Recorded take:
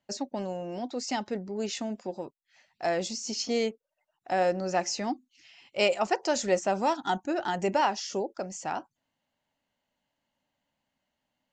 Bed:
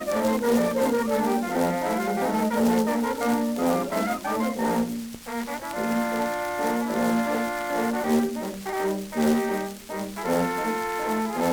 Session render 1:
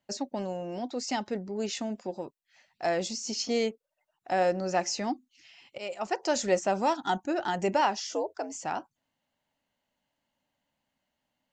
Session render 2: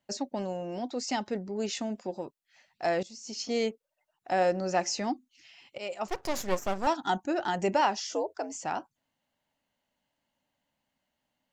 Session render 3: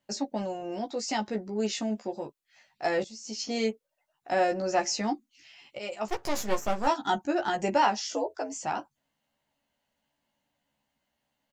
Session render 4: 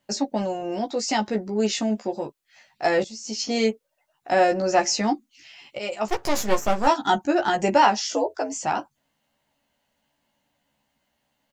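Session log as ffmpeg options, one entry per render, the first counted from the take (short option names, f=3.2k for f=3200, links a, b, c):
-filter_complex "[0:a]asettb=1/sr,asplit=3[a][b][c];[a]atrim=end=8.044[d];[b]atrim=start=8.04:end=8.59,asetpts=PTS-STARTPTS,afade=t=in:d=0.004:c=qsin,afade=t=out:st=0.546:d=0.004:c=qsin,afreqshift=82[e];[c]atrim=start=8.586[f];[d][e]acrossfade=d=0.004:c1=hsin:c2=qsin[g];[g][f]acrossfade=d=0.004:c1=qsin:c2=hsin,asplit=2[h][i];[h]atrim=end=5.78,asetpts=PTS-STARTPTS,afade=t=out:st=5.776:d=0.004:c=hsin:silence=0.0944061[j];[i]atrim=start=5.78,asetpts=PTS-STARTPTS,afade=t=in:d=0.54:silence=0.0944061[k];[j][k]concat=n=2:v=0:a=1"
-filter_complex "[0:a]asettb=1/sr,asplit=3[a][b][c];[a]atrim=end=6.084[d];[b]atrim=start=6.08:end=6.87,asetpts=PTS-STARTPTS,afade=t=in:d=0.004:c=qsin,afade=t=out:st=0.786:d=0.004:c=qsin,aeval=exprs='max(val(0),0)':c=same[e];[c]atrim=start=6.866[f];[d][e]acrossfade=d=0.004:c1=hsin:c2=qsin[g];[g][f]acrossfade=d=0.004:c1=qsin:c2=hsin,asplit=2[h][i];[h]atrim=end=3.03,asetpts=PTS-STARTPTS,afade=t=out:st=3.026:d=0.004:c=hsin:silence=0.125893[j];[i]atrim=start=3.03,asetpts=PTS-STARTPTS,afade=t=in:d=0.66:silence=0.125893[k];[j][k]concat=n=2:v=0:a=1"
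-filter_complex "[0:a]asplit=2[a][b];[b]adelay=14,volume=-3.5dB[c];[a][c]amix=inputs=2:normalize=0"
-af "volume=6.5dB"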